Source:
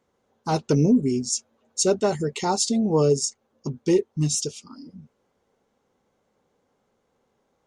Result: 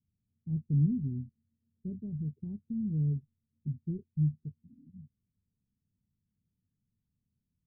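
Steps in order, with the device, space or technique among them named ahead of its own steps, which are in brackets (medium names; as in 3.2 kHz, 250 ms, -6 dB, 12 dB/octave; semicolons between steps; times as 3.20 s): the neighbour's flat through the wall (low-pass 180 Hz 24 dB/octave; peaking EQ 94 Hz +4.5 dB); trim -3.5 dB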